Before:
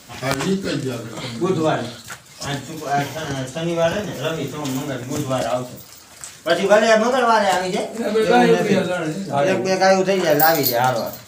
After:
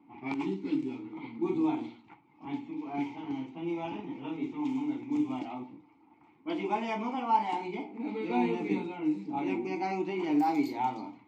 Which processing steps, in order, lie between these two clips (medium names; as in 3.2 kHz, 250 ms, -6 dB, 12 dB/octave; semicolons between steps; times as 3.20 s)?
vowel filter u; level-controlled noise filter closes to 1.2 kHz, open at -26.5 dBFS